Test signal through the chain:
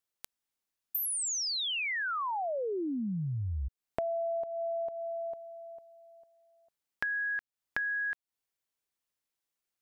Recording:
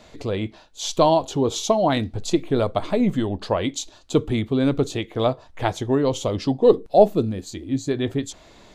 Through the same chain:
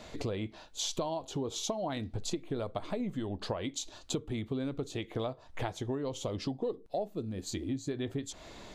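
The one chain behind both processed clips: compressor 10:1, threshold -32 dBFS

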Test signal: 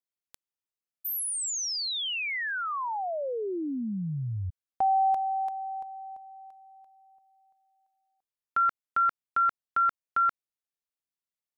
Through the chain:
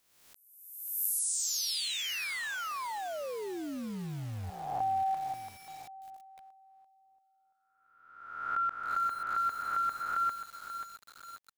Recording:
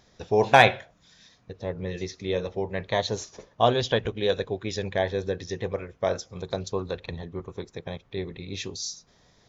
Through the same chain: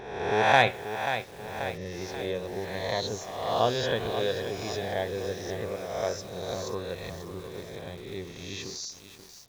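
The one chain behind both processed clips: spectral swells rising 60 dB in 1.10 s; lo-fi delay 0.535 s, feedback 55%, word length 6-bit, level -9 dB; gain -7 dB

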